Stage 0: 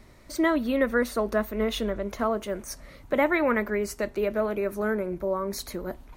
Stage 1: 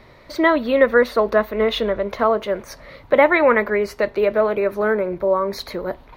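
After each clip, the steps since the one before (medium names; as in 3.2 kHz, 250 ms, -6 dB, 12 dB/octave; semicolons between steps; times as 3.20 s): graphic EQ 125/500/1000/2000/4000/8000 Hz +7/+10/+8/+7/+10/-10 dB; trim -1 dB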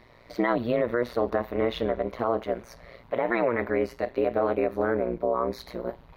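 harmonic-percussive split percussive -10 dB; peak limiter -13.5 dBFS, peak gain reduction 10 dB; AM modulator 120 Hz, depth 95%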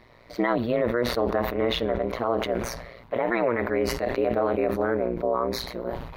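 decay stretcher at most 52 dB/s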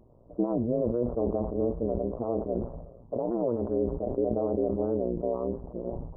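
Gaussian low-pass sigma 13 samples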